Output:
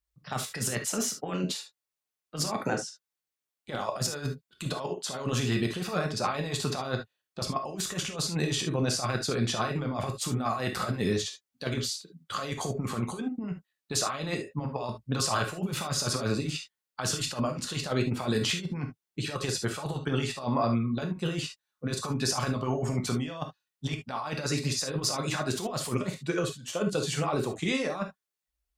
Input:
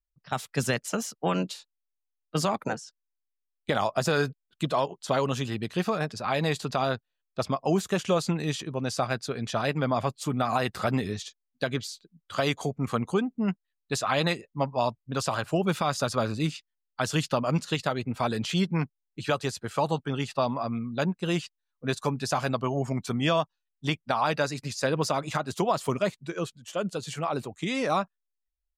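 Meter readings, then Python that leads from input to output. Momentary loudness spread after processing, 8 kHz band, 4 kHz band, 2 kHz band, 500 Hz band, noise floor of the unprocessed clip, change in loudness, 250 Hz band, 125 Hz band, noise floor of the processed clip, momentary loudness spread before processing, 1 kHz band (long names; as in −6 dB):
9 LU, +5.5 dB, +1.5 dB, −3.0 dB, −4.5 dB, −83 dBFS, −2.0 dB, −2.0 dB, −1.0 dB, below −85 dBFS, 8 LU, −5.0 dB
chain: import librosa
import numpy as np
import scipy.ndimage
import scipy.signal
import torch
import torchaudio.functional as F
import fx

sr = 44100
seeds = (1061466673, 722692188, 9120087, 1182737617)

y = scipy.signal.sosfilt(scipy.signal.butter(2, 49.0, 'highpass', fs=sr, output='sos'), x)
y = fx.over_compress(y, sr, threshold_db=-30.0, ratio=-0.5)
y = fx.rev_gated(y, sr, seeds[0], gate_ms=90, shape='flat', drr_db=3.0)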